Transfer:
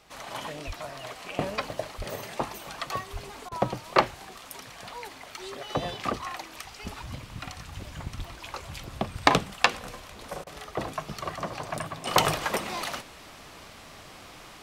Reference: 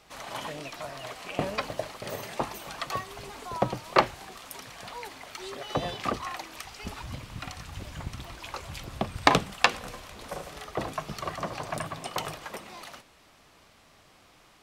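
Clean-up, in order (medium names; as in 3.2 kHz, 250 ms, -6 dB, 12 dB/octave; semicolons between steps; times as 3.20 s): de-plosive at 0.66/1.97/3.12/8.17 s; interpolate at 3.49/10.44 s, 26 ms; trim 0 dB, from 12.07 s -11 dB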